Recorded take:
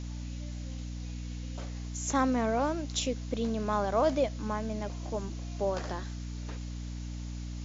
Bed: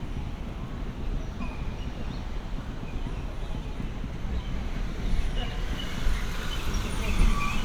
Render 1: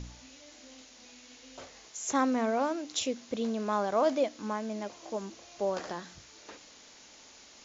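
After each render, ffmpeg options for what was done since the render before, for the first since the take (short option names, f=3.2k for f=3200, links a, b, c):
-af "bandreject=f=60:t=h:w=4,bandreject=f=120:t=h:w=4,bandreject=f=180:t=h:w=4,bandreject=f=240:t=h:w=4,bandreject=f=300:t=h:w=4"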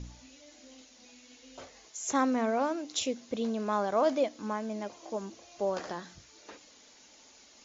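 -af "afftdn=nr=6:nf=-55"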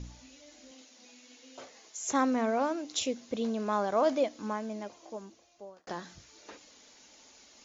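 -filter_complex "[0:a]asettb=1/sr,asplit=3[a][b][c];[a]atrim=end=0.714[d];[b]atrim=start=0.71:end=2.02,asetpts=PTS-STARTPTS,afade=t=in:d=0.004:c=qsin,afade=t=out:st=1.306:d=0.004:c=qsin,highpass=180[e];[c]atrim=start=2.016[f];[d][e]acrossfade=d=0.004:c1=hsin:c2=qsin[g];[g][f]acrossfade=d=0.004:c1=qsin:c2=hsin,asplit=2[h][i];[h]atrim=end=5.87,asetpts=PTS-STARTPTS,afade=t=out:st=4.46:d=1.41[j];[i]atrim=start=5.87,asetpts=PTS-STARTPTS,afade=t=in:d=0.004:c=hsin[k];[j][k]concat=n=2:v=0:a=1"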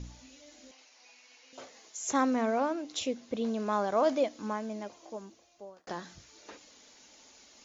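-filter_complex "[0:a]asettb=1/sr,asplit=3[a][b][c];[a]atrim=end=0.714[d];[b]atrim=start=0.71:end=1.53,asetpts=PTS-STARTPTS,afade=t=in:d=0.004:c=qsin,afade=t=out:st=0.816:d=0.004:c=qsin,highpass=f=420:w=0.5412,highpass=f=420:w=1.3066,equalizer=f=520:t=q:w=4:g=-8,equalizer=f=940:t=q:w=4:g=3,equalizer=f=2.4k:t=q:w=4:g=4,equalizer=f=3.5k:t=q:w=4:g=-6,lowpass=f=6.1k:w=0.5412,lowpass=f=6.1k:w=1.3066[e];[c]atrim=start=1.526[f];[d][e]acrossfade=d=0.004:c1=hsin:c2=qsin[g];[g][f]acrossfade=d=0.004:c1=qsin:c2=hsin,asettb=1/sr,asplit=3[h][i][j];[h]atrim=end=2.604[k];[i]atrim=start=2.6:end=3.47,asetpts=PTS-STARTPTS,afade=t=in:d=0.004:c=qsin,afade=t=out:st=0.866:d=0.004:c=qsin,highshelf=f=5.6k:g=-8[l];[j]atrim=start=3.466[m];[k][l]acrossfade=d=0.004:c1=hsin:c2=qsin[n];[n][m]acrossfade=d=0.004:c1=qsin:c2=hsin"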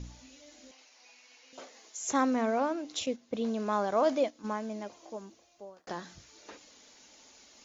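-filter_complex "[0:a]asettb=1/sr,asplit=3[a][b][c];[a]atrim=end=1.594[d];[b]atrim=start=1.59:end=2.09,asetpts=PTS-STARTPTS,afade=t=in:d=0.004:c=qsin,afade=t=out:st=0.496:d=0.004:c=qsin,highpass=f=190:w=0.5412,highpass=f=190:w=1.3066[e];[c]atrim=start=2.086[f];[d][e]acrossfade=d=0.004:c1=hsin:c2=qsin[g];[g][f]acrossfade=d=0.004:c1=qsin:c2=hsin,asettb=1/sr,asplit=3[h][i][j];[h]atrim=end=3.064[k];[i]atrim=start=3.06:end=4.57,asetpts=PTS-STARTPTS,afade=t=in:d=0.004:c=qsin,afade=t=out:st=1.506:d=0.004:c=qsin,agate=range=-9dB:threshold=-39dB:ratio=16:release=100:detection=peak[l];[j]atrim=start=4.566[m];[k][l]acrossfade=d=0.004:c1=hsin:c2=qsin[n];[n][m]acrossfade=d=0.004:c1=qsin:c2=hsin"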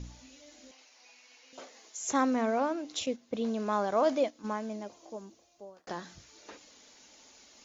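-filter_complex "[0:a]asettb=1/sr,asplit=3[a][b][c];[a]atrim=end=4.764[d];[b]atrim=start=4.76:end=5.75,asetpts=PTS-STARTPTS,afade=t=in:d=0.004:c=qsin,afade=t=out:st=0.986:d=0.004:c=qsin,equalizer=f=1.9k:w=0.67:g=-4.5[e];[c]atrim=start=5.746[f];[d][e]acrossfade=d=0.004:c1=hsin:c2=qsin[g];[g][f]acrossfade=d=0.004:c1=qsin:c2=hsin"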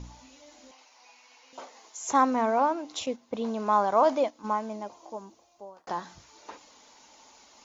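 -af "equalizer=f=940:w=1.8:g=11,bandreject=f=1.7k:w=30"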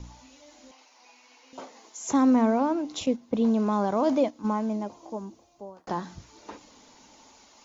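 -filter_complex "[0:a]acrossover=split=340|2300[a][b][c];[a]dynaudnorm=f=590:g=3:m=11dB[d];[b]alimiter=limit=-22dB:level=0:latency=1[e];[d][e][c]amix=inputs=3:normalize=0"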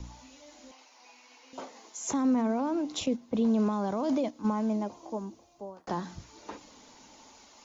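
-filter_complex "[0:a]alimiter=limit=-19dB:level=0:latency=1:release=15,acrossover=split=330|3000[a][b][c];[b]acompressor=threshold=-30dB:ratio=6[d];[a][d][c]amix=inputs=3:normalize=0"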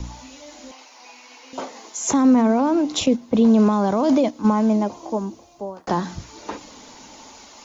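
-af "volume=11dB"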